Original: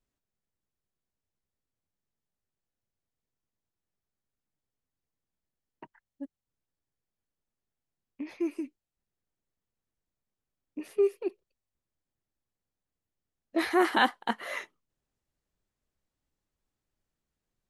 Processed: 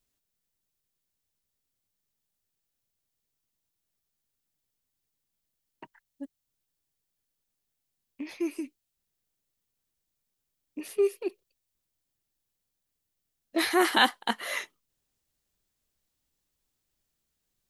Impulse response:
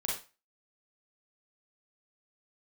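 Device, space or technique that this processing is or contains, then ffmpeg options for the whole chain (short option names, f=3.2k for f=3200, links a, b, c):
presence and air boost: -af "equalizer=f=3.6k:t=o:w=1.5:g=4.5,highshelf=f=5.2k:g=9.5,highshelf=f=10k:g=5"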